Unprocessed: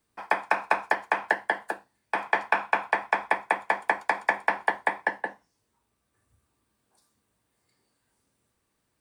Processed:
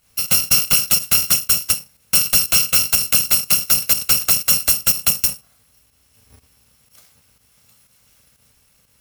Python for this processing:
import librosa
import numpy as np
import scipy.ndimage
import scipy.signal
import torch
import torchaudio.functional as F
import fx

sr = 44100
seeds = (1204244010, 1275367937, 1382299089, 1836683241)

y = fx.bit_reversed(x, sr, seeds[0], block=128)
y = fx.volume_shaper(y, sr, bpm=122, per_beat=1, depth_db=-9, release_ms=90.0, shape='fast start')
y = fx.fold_sine(y, sr, drive_db=18, ceiling_db=-4.5)
y = y * 10.0 ** (-3.0 / 20.0)